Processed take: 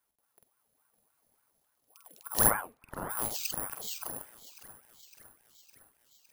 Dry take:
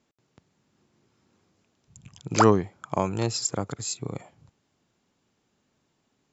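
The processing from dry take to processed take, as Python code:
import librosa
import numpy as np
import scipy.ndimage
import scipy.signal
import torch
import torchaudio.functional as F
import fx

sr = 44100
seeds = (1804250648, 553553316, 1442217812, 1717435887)

y = fx.doubler(x, sr, ms=47.0, db=-4.0)
y = fx.echo_thinned(y, sr, ms=559, feedback_pct=66, hz=300.0, wet_db=-15.5)
y = (np.kron(y[::4], np.eye(4)[0]) * 4)[:len(y)]
y = fx.lowpass(y, sr, hz=fx.line((2.49, 2200.0), (3.09, 1100.0)), slope=6, at=(2.49, 3.09), fade=0.02)
y = fx.ring_lfo(y, sr, carrier_hz=800.0, swing_pct=60, hz=3.5)
y = y * librosa.db_to_amplitude(-11.0)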